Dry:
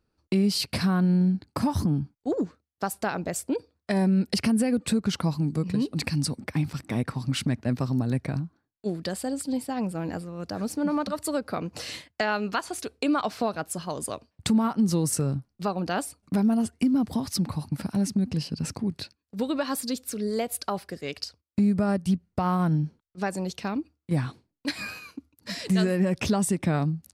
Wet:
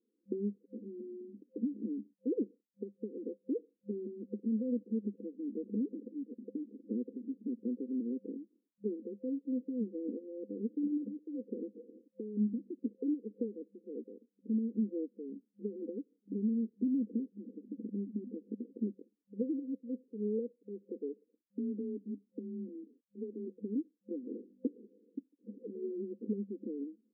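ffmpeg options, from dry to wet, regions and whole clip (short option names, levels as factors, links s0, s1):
-filter_complex "[0:a]asettb=1/sr,asplit=3[s0][s1][s2];[s0]atrim=end=12.374[s3];[s1]atrim=start=12.37:end=12.96,asetpts=PTS-STARTPTS,afade=t=in:d=0.004:c=qsin,afade=t=out:st=0.586:d=0.004:c=qsin,lowshelf=f=310:t=q:w=3:g=8.5,bandreject=f=50:t=h:w=6,bandreject=f=100:t=h:w=6,bandreject=f=150:t=h:w=6,bandreject=f=200:t=h:w=6,aeval=exprs='val(0)*gte(abs(val(0)),0.00562)':c=same[s4];[s2]atrim=start=12.956[s5];[s3][s4]acrossfade=d=0.004:c1=hsin:c2=qsin[s6];[s6][s5]acrossfade=d=0.004:c1=qsin:c2=hsin,asettb=1/sr,asplit=3[s7][s8][s9];[s7]atrim=end=21.224[s10];[s8]atrim=start=21.22:end=23.48,asetpts=PTS-STARTPTS,afade=t=in:d=0.004:c=qsin,afade=t=out:st=2.256:d=0.004:c=qsin,acompressor=threshold=0.0251:ratio=3:attack=3.2:release=140:knee=1:detection=peak,afreqshift=27,aecho=1:1:7:0.43,atrim=end_sample=99666[s11];[s9]atrim=start=23.476[s12];[s10][s11]acrossfade=d=0.004:c1=hsin:c2=qsin[s13];[s13][s12]acrossfade=d=0.004:c1=qsin:c2=hsin,asettb=1/sr,asplit=3[s14][s15][s16];[s14]atrim=end=24.274[s17];[s15]atrim=start=24.27:end=24.86,asetpts=PTS-STARTPTS,afade=t=in:d=0.004:c=qsin,afade=t=out:st=0.586:d=0.004:c=qsin,asplit=2[s18][s19];[s19]highpass=f=720:p=1,volume=70.8,asoftclip=type=tanh:threshold=0.2[s20];[s18][s20]amix=inputs=2:normalize=0,lowpass=f=3300:p=1,volume=0.501,aeval=exprs='val(0)+0.00355*(sin(2*PI*50*n/s)+sin(2*PI*2*50*n/s)/2+sin(2*PI*3*50*n/s)/3+sin(2*PI*4*50*n/s)/4+sin(2*PI*5*50*n/s)/5)':c=same,aeval=exprs='(mod(7.94*val(0)+1,2)-1)/7.94':c=same[s21];[s16]atrim=start=24.856[s22];[s17][s21]acrossfade=d=0.004:c1=hsin:c2=qsin[s23];[s23][s22]acrossfade=d=0.004:c1=qsin:c2=hsin,aemphasis=mode=production:type=75fm,acompressor=threshold=0.0398:ratio=4,afftfilt=real='re*between(b*sr/4096,200,520)':imag='im*between(b*sr/4096,200,520)':win_size=4096:overlap=0.75,volume=0.841"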